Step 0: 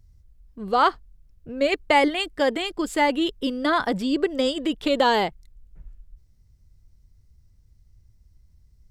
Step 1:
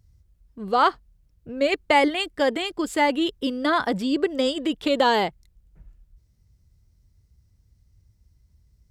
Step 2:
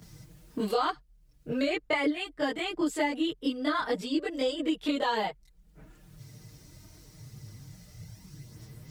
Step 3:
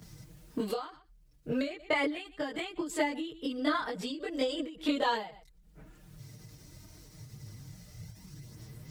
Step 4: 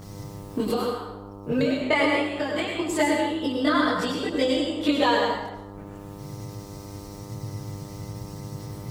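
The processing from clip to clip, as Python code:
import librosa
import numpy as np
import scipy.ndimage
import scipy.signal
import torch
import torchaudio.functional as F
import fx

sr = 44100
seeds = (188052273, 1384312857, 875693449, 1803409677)

y1 = scipy.signal.sosfilt(scipy.signal.butter(2, 48.0, 'highpass', fs=sr, output='sos'), x)
y2 = fx.chorus_voices(y1, sr, voices=4, hz=0.42, base_ms=24, depth_ms=4.6, mix_pct=70)
y2 = y2 + 0.5 * np.pad(y2, (int(6.5 * sr / 1000.0), 0))[:len(y2)]
y2 = fx.band_squash(y2, sr, depth_pct=100)
y2 = F.gain(torch.from_numpy(y2), -6.5).numpy()
y3 = y2 + 10.0 ** (-23.5 / 20.0) * np.pad(y2, (int(121 * sr / 1000.0), 0))[:len(y2)]
y3 = fx.end_taper(y3, sr, db_per_s=110.0)
y4 = fx.dmg_buzz(y3, sr, base_hz=100.0, harmonics=13, level_db=-49.0, tilt_db=-6, odd_only=False)
y4 = fx.rev_plate(y4, sr, seeds[0], rt60_s=0.89, hf_ratio=0.75, predelay_ms=80, drr_db=0.5)
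y4 = F.gain(torch.from_numpy(y4), 6.5).numpy()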